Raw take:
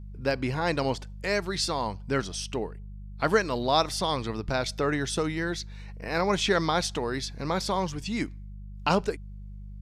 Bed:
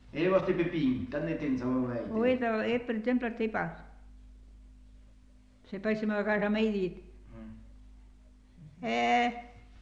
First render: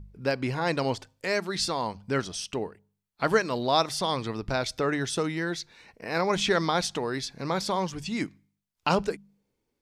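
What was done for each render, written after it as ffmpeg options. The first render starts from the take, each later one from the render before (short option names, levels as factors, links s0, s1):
-af "bandreject=f=50:t=h:w=4,bandreject=f=100:t=h:w=4,bandreject=f=150:t=h:w=4,bandreject=f=200:t=h:w=4"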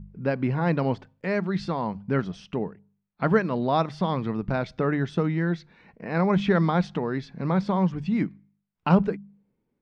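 -af "lowpass=2100,equalizer=f=180:w=1.6:g=11.5"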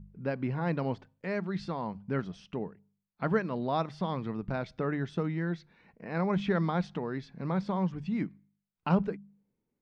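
-af "volume=0.447"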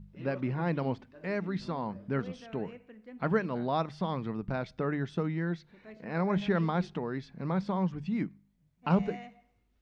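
-filter_complex "[1:a]volume=0.106[s0];[0:a][s0]amix=inputs=2:normalize=0"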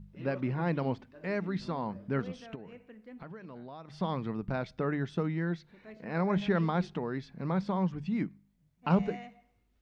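-filter_complex "[0:a]asplit=3[s0][s1][s2];[s0]afade=t=out:st=2.54:d=0.02[s3];[s1]acompressor=threshold=0.00708:ratio=6:attack=3.2:release=140:knee=1:detection=peak,afade=t=in:st=2.54:d=0.02,afade=t=out:st=3.98:d=0.02[s4];[s2]afade=t=in:st=3.98:d=0.02[s5];[s3][s4][s5]amix=inputs=3:normalize=0"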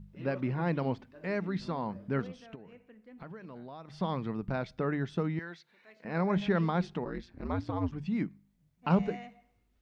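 -filter_complex "[0:a]asettb=1/sr,asplit=3[s0][s1][s2];[s0]atrim=end=5.394[s3];[s1]atrim=start=5.39:end=6.05,asetpts=PTS-STARTPTS,afade=t=in:d=0.004:c=qsin,afade=t=out:st=0.656:d=0.004:c=qsin,highpass=f=1300:p=1[s4];[s2]atrim=start=6.046[s5];[s3][s4]acrossfade=d=0.004:c1=hsin:c2=qsin[s6];[s6][s5]acrossfade=d=0.004:c1=qsin:c2=hsin,asplit=3[s7][s8][s9];[s7]afade=t=out:st=7.04:d=0.02[s10];[s8]aeval=exprs='val(0)*sin(2*PI*88*n/s)':c=same,afade=t=in:st=7.04:d=0.02,afade=t=out:st=7.91:d=0.02[s11];[s9]afade=t=in:st=7.91:d=0.02[s12];[s10][s11][s12]amix=inputs=3:normalize=0,asplit=3[s13][s14][s15];[s13]atrim=end=2.272[s16];[s14]atrim=start=2.268:end=3.182,asetpts=PTS-STARTPTS,volume=0.631[s17];[s15]atrim=start=3.178[s18];[s16][s17]acrossfade=d=0.004:c1=hsin:c2=hsin[s19];[s19][s18]acrossfade=d=0.004:c1=hsin:c2=hsin"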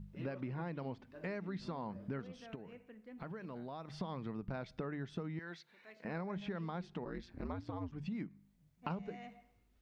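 -af "acompressor=threshold=0.0126:ratio=8"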